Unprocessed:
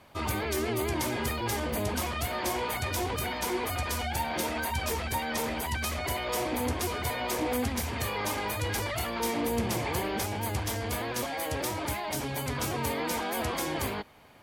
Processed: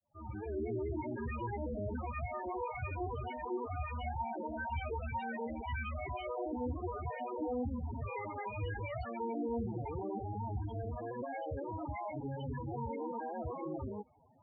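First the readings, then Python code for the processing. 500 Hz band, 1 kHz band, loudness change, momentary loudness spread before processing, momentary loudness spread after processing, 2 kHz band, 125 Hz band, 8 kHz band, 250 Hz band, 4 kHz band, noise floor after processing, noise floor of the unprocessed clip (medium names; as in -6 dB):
-6.5 dB, -7.5 dB, -8.5 dB, 2 LU, 3 LU, -13.0 dB, -5.5 dB, under -40 dB, -6.5 dB, -23.5 dB, -45 dBFS, -35 dBFS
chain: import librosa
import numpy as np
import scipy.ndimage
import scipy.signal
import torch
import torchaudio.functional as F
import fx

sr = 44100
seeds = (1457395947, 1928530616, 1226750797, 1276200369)

y = fx.fade_in_head(x, sr, length_s=0.59)
y = np.clip(y, -10.0 ** (-27.0 / 20.0), 10.0 ** (-27.0 / 20.0))
y = fx.spec_topn(y, sr, count=8)
y = y * 10.0 ** (-3.5 / 20.0)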